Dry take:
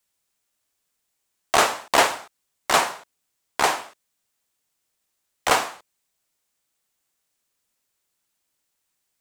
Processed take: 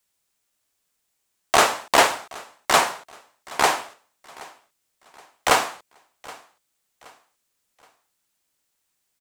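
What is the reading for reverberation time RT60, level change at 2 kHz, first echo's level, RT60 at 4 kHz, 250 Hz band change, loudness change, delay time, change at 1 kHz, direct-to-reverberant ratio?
none, +1.5 dB, -22.0 dB, none, +1.5 dB, +1.0 dB, 0.773 s, +1.5 dB, none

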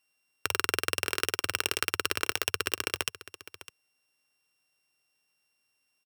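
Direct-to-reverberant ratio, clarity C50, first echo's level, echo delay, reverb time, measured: none, none, -16.0 dB, 0.605 s, none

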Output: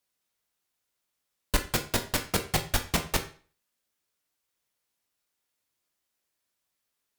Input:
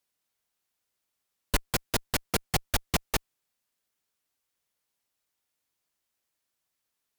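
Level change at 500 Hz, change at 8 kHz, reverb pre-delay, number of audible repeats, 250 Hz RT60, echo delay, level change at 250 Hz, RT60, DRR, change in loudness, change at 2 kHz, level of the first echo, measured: +1.5 dB, +1.0 dB, 13 ms, none, 0.45 s, none, +1.5 dB, 0.40 s, 5.0 dB, +1.0 dB, +1.5 dB, none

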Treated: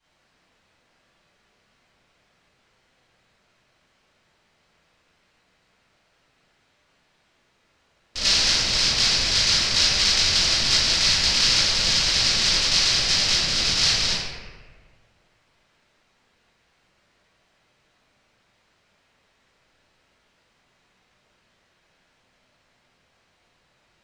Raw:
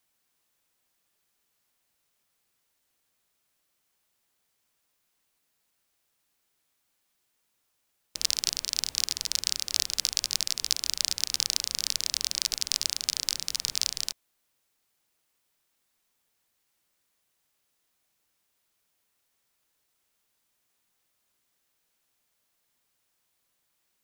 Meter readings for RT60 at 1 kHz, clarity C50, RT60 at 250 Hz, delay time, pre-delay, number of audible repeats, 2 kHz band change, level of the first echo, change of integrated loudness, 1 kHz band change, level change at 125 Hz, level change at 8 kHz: 1.4 s, -2.0 dB, 1.6 s, none, 3 ms, none, +16.5 dB, none, +9.5 dB, +17.5 dB, +21.5 dB, +5.0 dB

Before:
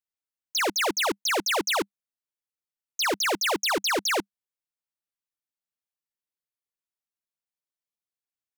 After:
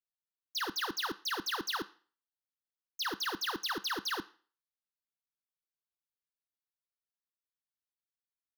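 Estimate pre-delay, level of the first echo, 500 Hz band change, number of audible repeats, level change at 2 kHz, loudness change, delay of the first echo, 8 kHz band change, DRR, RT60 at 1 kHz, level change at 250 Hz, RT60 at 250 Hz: 7 ms, none, -15.5 dB, none, -10.5 dB, -10.0 dB, none, -14.5 dB, 11.5 dB, 0.40 s, -10.0 dB, 0.40 s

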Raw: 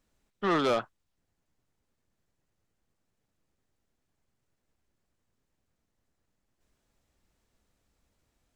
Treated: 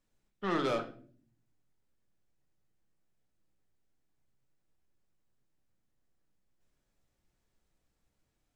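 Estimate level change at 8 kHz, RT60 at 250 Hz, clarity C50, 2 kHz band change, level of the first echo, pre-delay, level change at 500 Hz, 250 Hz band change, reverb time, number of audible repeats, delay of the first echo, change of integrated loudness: -6.0 dB, 0.90 s, 13.0 dB, -5.0 dB, none, 5 ms, -5.0 dB, -4.0 dB, 0.50 s, none, none, -5.0 dB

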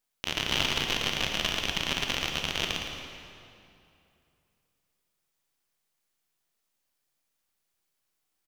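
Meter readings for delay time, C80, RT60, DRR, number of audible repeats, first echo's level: 0.112 s, 3.0 dB, 2.7 s, 1.5 dB, 1, -9.0 dB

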